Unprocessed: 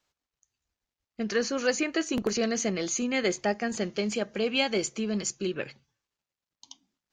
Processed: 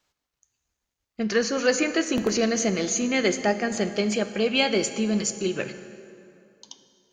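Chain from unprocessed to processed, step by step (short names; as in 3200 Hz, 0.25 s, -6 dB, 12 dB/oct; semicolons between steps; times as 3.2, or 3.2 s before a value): plate-style reverb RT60 2.7 s, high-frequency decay 0.65×, DRR 9.5 dB; gain +4 dB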